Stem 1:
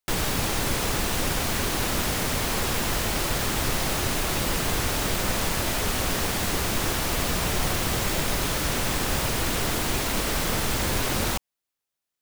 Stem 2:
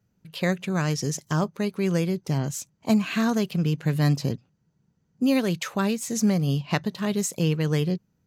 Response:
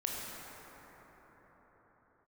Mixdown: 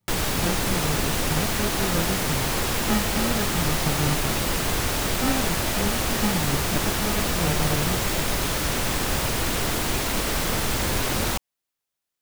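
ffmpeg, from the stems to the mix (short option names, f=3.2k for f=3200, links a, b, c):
-filter_complex "[0:a]volume=1dB[a];[1:a]acrusher=samples=42:mix=1:aa=0.000001,volume=-4.5dB[b];[a][b]amix=inputs=2:normalize=0"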